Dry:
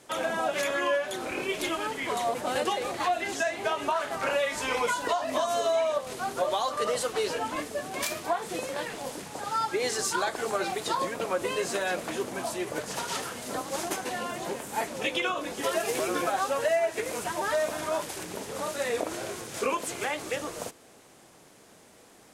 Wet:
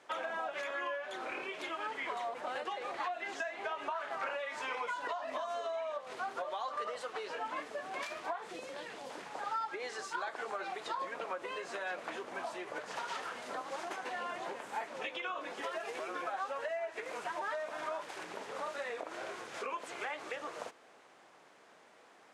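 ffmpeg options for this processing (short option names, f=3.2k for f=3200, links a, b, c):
-filter_complex "[0:a]asettb=1/sr,asplit=3[a][b][c];[a]atrim=end=8.504[d];[b]atrim=start=8.5:end=9.1,asetpts=PTS-STARTPTS,afade=t=in:d=0.004:c=qsin,afade=t=out:st=0.596:d=0.004:c=qsin,acrossover=split=460|3000[e][f][g];[f]acompressor=threshold=-44dB:ratio=6:attack=3.2:release=140:knee=2.83:detection=peak[h];[e][h][g]amix=inputs=3:normalize=0[i];[c]atrim=start=9.096[j];[d][i]acrossfade=d=0.004:c1=hsin:c2=qsin[k];[k][j]acrossfade=d=0.004:c1=qsin:c2=hsin,acompressor=threshold=-32dB:ratio=6,lowpass=1.3k,aderivative,volume=17dB"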